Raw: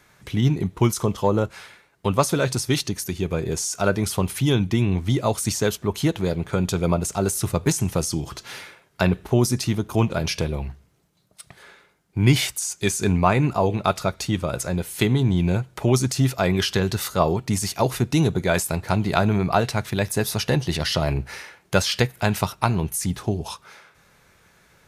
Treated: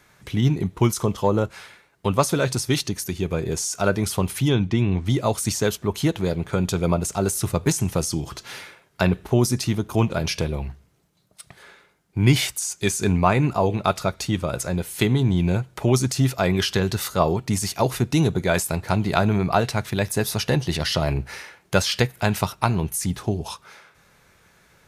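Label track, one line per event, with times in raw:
4.480000	5.060000	high-frequency loss of the air 74 metres

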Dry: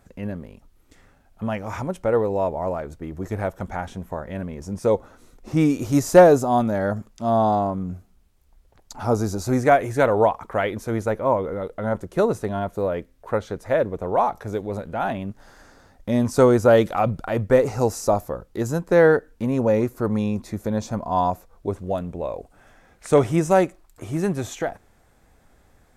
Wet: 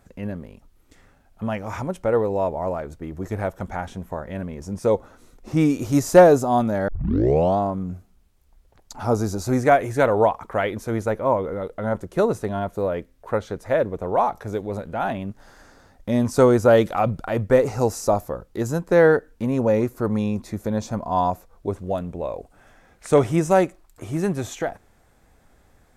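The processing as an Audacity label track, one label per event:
6.880000	6.880000	tape start 0.70 s

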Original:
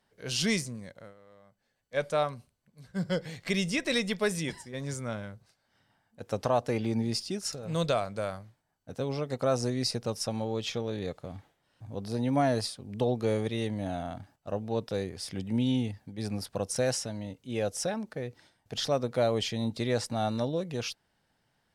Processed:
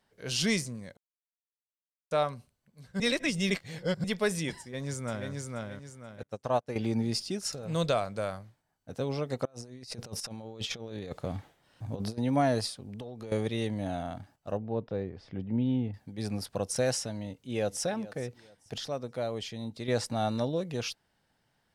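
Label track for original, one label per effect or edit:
0.970000	2.110000	silence
3.000000	4.040000	reverse
4.590000	5.310000	delay throw 480 ms, feedback 35%, level −2.5 dB
6.230000	6.760000	expander for the loud parts 2.5 to 1, over −43 dBFS
9.450000	12.180000	compressor whose output falls as the input rises −38 dBFS, ratio −0.5
12.740000	13.320000	downward compressor 16 to 1, threshold −37 dBFS
14.570000	15.940000	head-to-tape spacing loss at 10 kHz 39 dB
17.120000	17.850000	delay throw 430 ms, feedback 30%, level −17.5 dB
18.780000	19.880000	clip gain −7 dB

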